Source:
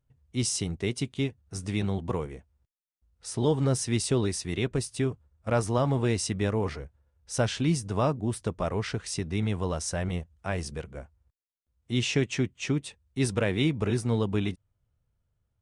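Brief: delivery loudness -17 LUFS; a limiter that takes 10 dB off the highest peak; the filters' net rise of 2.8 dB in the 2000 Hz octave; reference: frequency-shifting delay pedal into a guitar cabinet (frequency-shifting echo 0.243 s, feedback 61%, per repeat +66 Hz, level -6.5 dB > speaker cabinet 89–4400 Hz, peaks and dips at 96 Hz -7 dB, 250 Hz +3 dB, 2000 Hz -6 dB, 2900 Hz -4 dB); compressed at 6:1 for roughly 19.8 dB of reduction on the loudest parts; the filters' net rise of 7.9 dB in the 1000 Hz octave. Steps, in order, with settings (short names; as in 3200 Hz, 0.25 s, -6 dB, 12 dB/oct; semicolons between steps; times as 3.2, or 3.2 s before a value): bell 1000 Hz +9 dB; bell 2000 Hz +5 dB; compressor 6:1, threshold -39 dBFS; limiter -32 dBFS; frequency-shifting echo 0.243 s, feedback 61%, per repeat +66 Hz, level -6.5 dB; speaker cabinet 89–4400 Hz, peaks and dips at 96 Hz -7 dB, 250 Hz +3 dB, 2000 Hz -6 dB, 2900 Hz -4 dB; gain +27 dB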